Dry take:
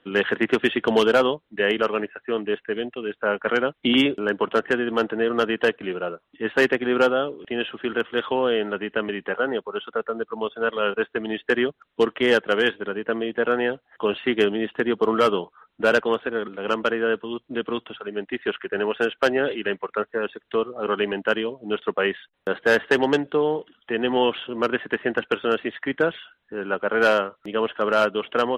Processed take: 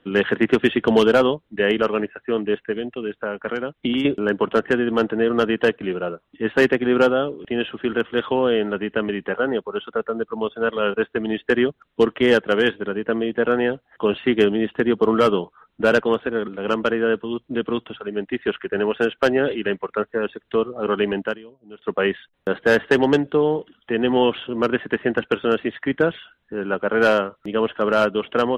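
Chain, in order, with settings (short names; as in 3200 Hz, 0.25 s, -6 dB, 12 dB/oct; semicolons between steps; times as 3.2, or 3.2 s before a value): 2.71–4.05 compressor 3:1, threshold -26 dBFS, peak gain reduction 9 dB; low shelf 300 Hz +9 dB; 21.22–21.94 dip -19 dB, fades 0.16 s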